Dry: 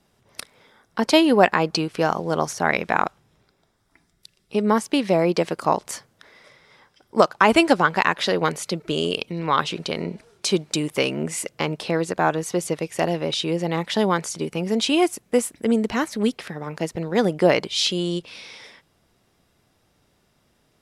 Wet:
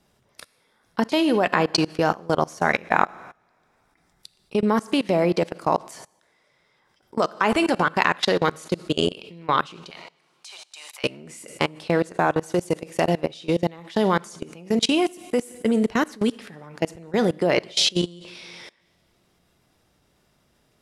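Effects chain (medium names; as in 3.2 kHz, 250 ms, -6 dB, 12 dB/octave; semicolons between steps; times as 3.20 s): 9.90–11.04 s: Chebyshev high-pass 740 Hz, order 4; two-slope reverb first 0.94 s, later 2.6 s, DRR 11.5 dB; level held to a coarse grid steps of 23 dB; trim +4 dB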